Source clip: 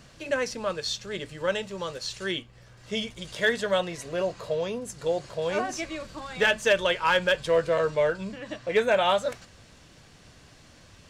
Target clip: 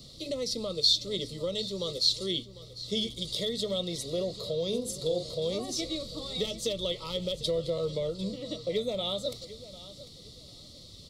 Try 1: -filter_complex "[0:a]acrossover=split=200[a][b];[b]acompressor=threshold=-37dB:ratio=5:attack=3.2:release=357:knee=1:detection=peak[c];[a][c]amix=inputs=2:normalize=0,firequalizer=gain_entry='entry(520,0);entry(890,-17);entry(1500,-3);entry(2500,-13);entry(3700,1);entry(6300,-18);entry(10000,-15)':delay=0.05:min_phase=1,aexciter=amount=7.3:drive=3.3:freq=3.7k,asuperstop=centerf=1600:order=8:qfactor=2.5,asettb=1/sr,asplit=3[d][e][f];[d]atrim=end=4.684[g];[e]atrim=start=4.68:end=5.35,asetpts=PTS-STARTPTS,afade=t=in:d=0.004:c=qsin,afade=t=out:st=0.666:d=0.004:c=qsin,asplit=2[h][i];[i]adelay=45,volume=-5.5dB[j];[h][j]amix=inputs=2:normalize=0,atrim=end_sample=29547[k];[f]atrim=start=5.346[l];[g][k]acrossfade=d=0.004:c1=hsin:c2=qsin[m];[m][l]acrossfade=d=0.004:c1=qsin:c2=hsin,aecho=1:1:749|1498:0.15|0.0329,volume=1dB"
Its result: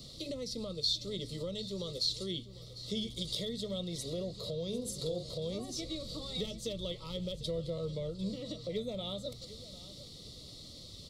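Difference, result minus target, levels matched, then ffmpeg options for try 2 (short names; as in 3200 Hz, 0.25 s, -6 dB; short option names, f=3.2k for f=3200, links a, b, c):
compressor: peak gain reduction +8.5 dB
-filter_complex "[0:a]acrossover=split=200[a][b];[b]acompressor=threshold=-26.5dB:ratio=5:attack=3.2:release=357:knee=1:detection=peak[c];[a][c]amix=inputs=2:normalize=0,firequalizer=gain_entry='entry(520,0);entry(890,-17);entry(1500,-3);entry(2500,-13);entry(3700,1);entry(6300,-18);entry(10000,-15)':delay=0.05:min_phase=1,aexciter=amount=7.3:drive=3.3:freq=3.7k,asuperstop=centerf=1600:order=8:qfactor=2.5,asettb=1/sr,asplit=3[d][e][f];[d]atrim=end=4.684[g];[e]atrim=start=4.68:end=5.35,asetpts=PTS-STARTPTS,afade=t=in:d=0.004:c=qsin,afade=t=out:st=0.666:d=0.004:c=qsin,asplit=2[h][i];[i]adelay=45,volume=-5.5dB[j];[h][j]amix=inputs=2:normalize=0,atrim=end_sample=29547[k];[f]atrim=start=5.346[l];[g][k]acrossfade=d=0.004:c1=hsin:c2=qsin[m];[m][l]acrossfade=d=0.004:c1=qsin:c2=hsin,aecho=1:1:749|1498:0.15|0.0329,volume=1dB"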